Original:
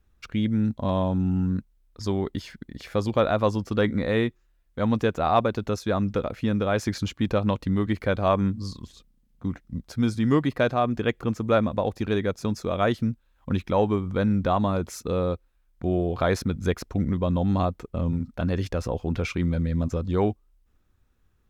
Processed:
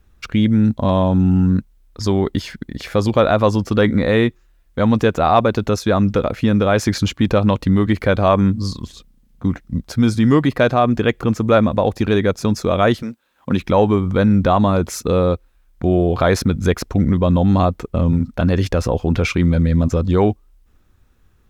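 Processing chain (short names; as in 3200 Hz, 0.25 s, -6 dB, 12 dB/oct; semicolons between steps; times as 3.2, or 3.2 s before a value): 13.01–13.6 HPF 480 Hz -> 120 Hz 12 dB/oct; in parallel at +1 dB: limiter -18.5 dBFS, peak gain reduction 10.5 dB; on the sum: gain +4 dB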